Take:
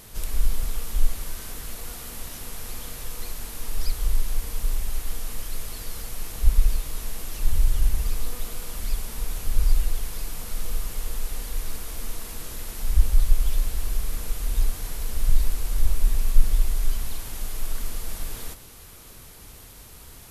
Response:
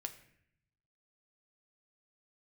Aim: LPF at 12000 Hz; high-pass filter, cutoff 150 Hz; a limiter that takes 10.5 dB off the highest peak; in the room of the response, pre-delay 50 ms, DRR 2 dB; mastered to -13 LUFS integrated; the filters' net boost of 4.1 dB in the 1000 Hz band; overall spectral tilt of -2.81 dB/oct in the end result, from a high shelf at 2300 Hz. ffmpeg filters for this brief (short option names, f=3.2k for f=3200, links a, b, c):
-filter_complex "[0:a]highpass=150,lowpass=12k,equalizer=f=1k:t=o:g=6,highshelf=f=2.3k:g=-4.5,alimiter=level_in=9dB:limit=-24dB:level=0:latency=1,volume=-9dB,asplit=2[a][b];[1:a]atrim=start_sample=2205,adelay=50[c];[b][c]afir=irnorm=-1:irlink=0,volume=0.5dB[d];[a][d]amix=inputs=2:normalize=0,volume=27dB"